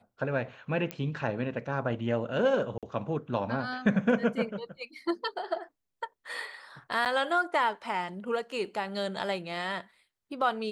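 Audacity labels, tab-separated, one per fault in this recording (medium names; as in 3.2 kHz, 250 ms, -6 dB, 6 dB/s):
0.910000	0.910000	pop -18 dBFS
2.780000	2.830000	dropout 47 ms
7.050000	7.060000	dropout 8.1 ms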